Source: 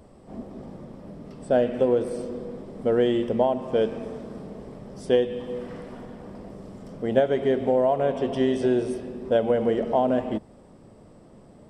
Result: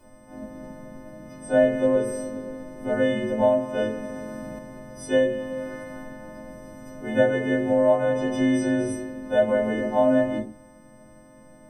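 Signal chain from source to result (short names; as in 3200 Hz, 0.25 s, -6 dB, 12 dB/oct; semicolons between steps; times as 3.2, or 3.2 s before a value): frequency quantiser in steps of 3 st; shoebox room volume 150 m³, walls furnished, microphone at 2.7 m; 4.09–4.59 fast leveller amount 70%; gain -7.5 dB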